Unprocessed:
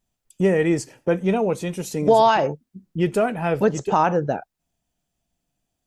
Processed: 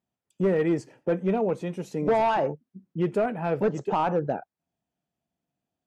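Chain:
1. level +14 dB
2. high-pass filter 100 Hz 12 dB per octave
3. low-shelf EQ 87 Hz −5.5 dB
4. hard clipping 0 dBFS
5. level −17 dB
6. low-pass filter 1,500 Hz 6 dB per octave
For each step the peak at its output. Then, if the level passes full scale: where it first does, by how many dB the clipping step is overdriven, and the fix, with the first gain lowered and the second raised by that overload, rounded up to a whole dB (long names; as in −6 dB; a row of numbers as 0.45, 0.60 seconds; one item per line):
+8.0, +8.5, +8.5, 0.0, −17.0, −17.0 dBFS
step 1, 8.5 dB
step 1 +5 dB, step 5 −8 dB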